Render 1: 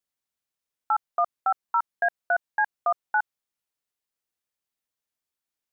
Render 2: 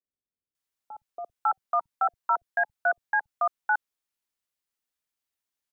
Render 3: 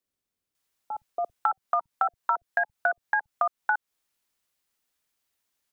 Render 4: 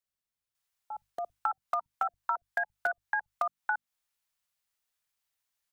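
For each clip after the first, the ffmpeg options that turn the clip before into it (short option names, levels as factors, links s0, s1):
-filter_complex "[0:a]acrossover=split=160|560[s0][s1][s2];[s0]adelay=50[s3];[s2]adelay=550[s4];[s3][s1][s4]amix=inputs=3:normalize=0"
-af "acompressor=threshold=0.0282:ratio=6,volume=2.66"
-filter_complex "[0:a]bandreject=f=50:t=h:w=6,bandreject=f=100:t=h:w=6,bandreject=f=150:t=h:w=6,bandreject=f=200:t=h:w=6,bandreject=f=250:t=h:w=6,bandreject=f=300:t=h:w=6,acrossover=split=210|490[s0][s1][s2];[s1]acrusher=bits=5:mix=0:aa=0.000001[s3];[s0][s3][s2]amix=inputs=3:normalize=0,volume=0.562"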